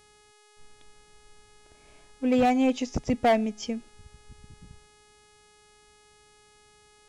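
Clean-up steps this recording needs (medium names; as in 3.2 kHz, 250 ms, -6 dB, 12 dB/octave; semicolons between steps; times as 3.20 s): clip repair -16.5 dBFS; de-hum 419.3 Hz, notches 26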